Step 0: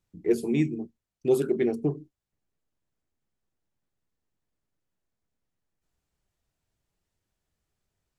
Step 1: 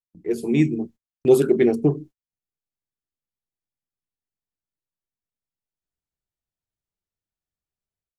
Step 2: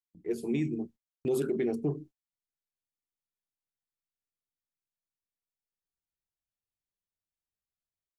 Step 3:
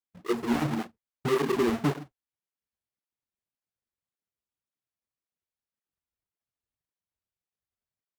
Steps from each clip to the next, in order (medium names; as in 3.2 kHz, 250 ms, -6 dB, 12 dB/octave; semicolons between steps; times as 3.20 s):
gate -48 dBFS, range -26 dB; level rider gain up to 15.5 dB; trim -3 dB
peak limiter -13.5 dBFS, peak gain reduction 8.5 dB; trim -8 dB
square wave that keeps the level; treble shelf 3.6 kHz -9 dB; cancelling through-zero flanger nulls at 1.8 Hz, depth 7.7 ms; trim +3.5 dB